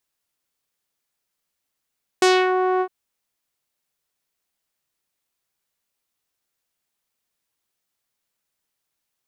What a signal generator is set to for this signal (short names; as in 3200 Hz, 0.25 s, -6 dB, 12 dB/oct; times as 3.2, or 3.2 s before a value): synth note saw F#4 12 dB/oct, low-pass 1100 Hz, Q 1.4, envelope 3 oct, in 0.32 s, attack 3.2 ms, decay 0.24 s, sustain -6.5 dB, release 0.07 s, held 0.59 s